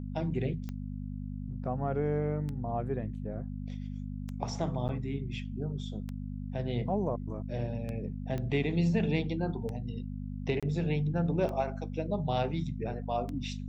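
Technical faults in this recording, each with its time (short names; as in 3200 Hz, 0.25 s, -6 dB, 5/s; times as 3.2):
hum 50 Hz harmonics 5 -38 dBFS
tick 33 1/3 rpm -26 dBFS
4.88–4.89 gap 8.7 ms
8.38 pop -24 dBFS
10.6–10.63 gap 26 ms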